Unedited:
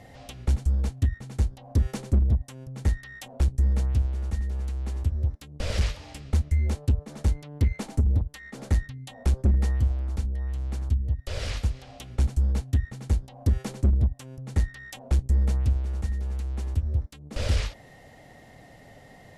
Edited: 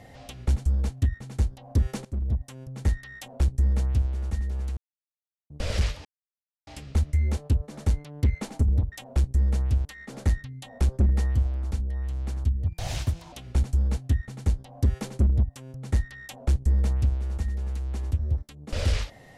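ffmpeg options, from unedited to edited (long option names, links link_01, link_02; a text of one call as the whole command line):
ffmpeg -i in.wav -filter_complex "[0:a]asplit=9[link_01][link_02][link_03][link_04][link_05][link_06][link_07][link_08][link_09];[link_01]atrim=end=2.05,asetpts=PTS-STARTPTS,afade=type=out:start_time=2.046:duration=0.004:curve=hsin:silence=0.141254[link_10];[link_02]atrim=start=2.05:end=4.77,asetpts=PTS-STARTPTS,afade=type=in:duration=0.46:silence=0.141254,afade=type=out:start_time=2.716:duration=0.004:curve=hsin[link_11];[link_03]atrim=start=4.77:end=5.5,asetpts=PTS-STARTPTS,volume=0[link_12];[link_04]atrim=start=5.5:end=6.05,asetpts=PTS-STARTPTS,afade=type=in:duration=0.004:curve=hsin,afade=type=out:start_time=0.546:duration=0.004:curve=hsin,apad=pad_dur=0.62[link_13];[link_05]atrim=start=6.05:end=8.302,asetpts=PTS-STARTPTS,afade=type=in:duration=0.004:curve=hsin[link_14];[link_06]atrim=start=3.158:end=4.092[link_15];[link_07]atrim=start=8.298:end=11.114[link_16];[link_08]atrim=start=11.11:end=11.96,asetpts=PTS-STARTPTS,asetrate=56448,aresample=44100,atrim=end_sample=29285,asetpts=PTS-STARTPTS[link_17];[link_09]atrim=start=11.956[link_18];[link_10][link_11][link_12][link_13][link_14]concat=n=5:v=0:a=1[link_19];[link_19][link_15]acrossfade=duration=0.004:curve1=hsin:curve2=hsin[link_20];[link_20][link_16]acrossfade=duration=0.004:curve1=hsin:curve2=hsin[link_21];[link_21][link_17]acrossfade=duration=0.004:curve1=hsin:curve2=hsin[link_22];[link_22][link_18]acrossfade=duration=0.004:curve1=hsin:curve2=hsin" out.wav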